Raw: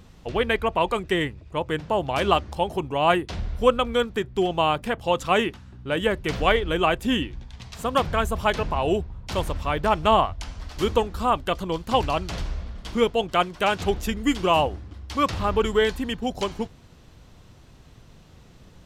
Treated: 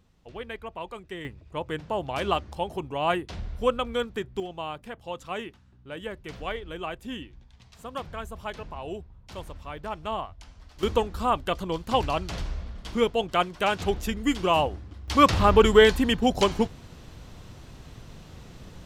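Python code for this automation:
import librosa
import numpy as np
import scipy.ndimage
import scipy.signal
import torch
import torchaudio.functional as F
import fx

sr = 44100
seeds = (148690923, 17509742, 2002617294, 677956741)

y = fx.gain(x, sr, db=fx.steps((0.0, -14.5), (1.25, -5.5), (4.4, -13.0), (10.83, -2.5), (15.08, 5.0)))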